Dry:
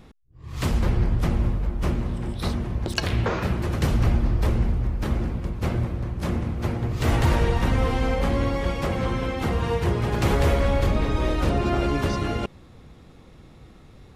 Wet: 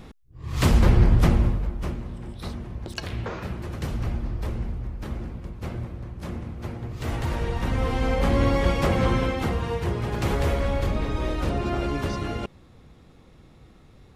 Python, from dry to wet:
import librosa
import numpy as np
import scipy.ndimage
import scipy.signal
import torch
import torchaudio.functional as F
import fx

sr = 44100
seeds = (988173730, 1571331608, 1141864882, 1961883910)

y = fx.gain(x, sr, db=fx.line((1.25, 5.0), (2.0, -7.5), (7.29, -7.5), (8.52, 3.5), (9.17, 3.5), (9.66, -3.5)))